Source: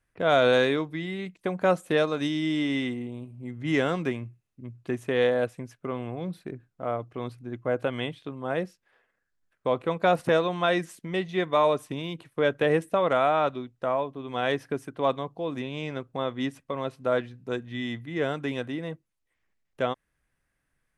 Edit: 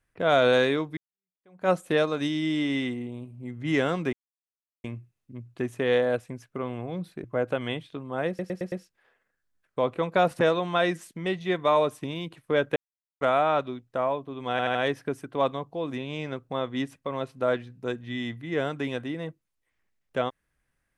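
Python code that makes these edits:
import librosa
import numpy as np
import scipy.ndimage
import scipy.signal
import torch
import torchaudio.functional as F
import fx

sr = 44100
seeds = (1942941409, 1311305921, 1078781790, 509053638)

y = fx.edit(x, sr, fx.fade_in_span(start_s=0.97, length_s=0.72, curve='exp'),
    fx.insert_silence(at_s=4.13, length_s=0.71),
    fx.cut(start_s=6.53, length_s=1.03),
    fx.stutter(start_s=8.6, slice_s=0.11, count=5),
    fx.silence(start_s=12.64, length_s=0.45),
    fx.stutter(start_s=14.39, slice_s=0.08, count=4), tone=tone)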